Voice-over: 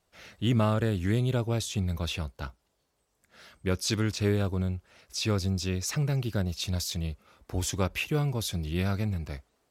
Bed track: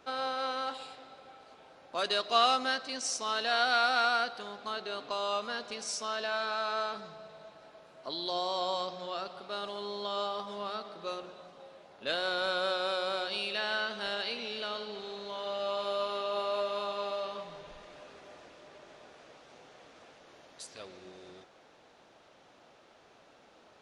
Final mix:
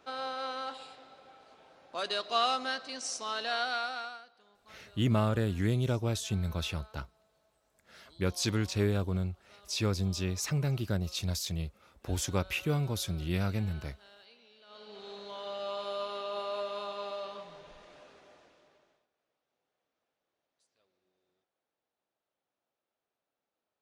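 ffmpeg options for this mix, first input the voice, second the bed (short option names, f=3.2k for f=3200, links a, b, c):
-filter_complex "[0:a]adelay=4550,volume=-2.5dB[a];[1:a]volume=16dB,afade=t=out:st=3.5:d=0.72:silence=0.105925,afade=t=in:st=14.66:d=0.45:silence=0.112202,afade=t=out:st=17.94:d=1.13:silence=0.0473151[b];[a][b]amix=inputs=2:normalize=0"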